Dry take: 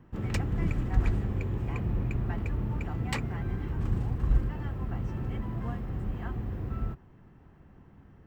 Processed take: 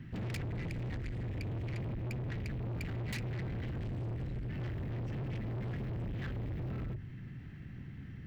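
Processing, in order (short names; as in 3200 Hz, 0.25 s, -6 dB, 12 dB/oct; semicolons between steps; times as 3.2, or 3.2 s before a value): notches 50/100/150/200 Hz; compressor 6:1, threshold -34 dBFS, peak gain reduction 14 dB; graphic EQ 125/250/500/1000/2000/4000 Hz +11/+4/-8/-11/+11/+8 dB; soft clip -39.5 dBFS, distortion -6 dB; gain +3.5 dB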